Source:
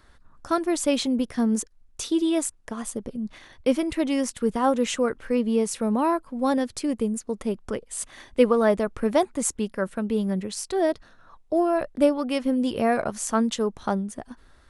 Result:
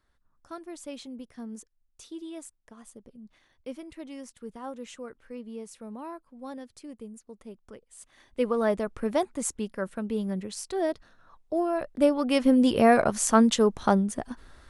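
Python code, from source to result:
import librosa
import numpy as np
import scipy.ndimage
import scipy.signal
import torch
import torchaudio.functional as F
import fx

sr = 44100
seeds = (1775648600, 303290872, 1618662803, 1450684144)

y = fx.gain(x, sr, db=fx.line((7.99, -17.0), (8.6, -5.0), (11.85, -5.0), (12.45, 3.5)))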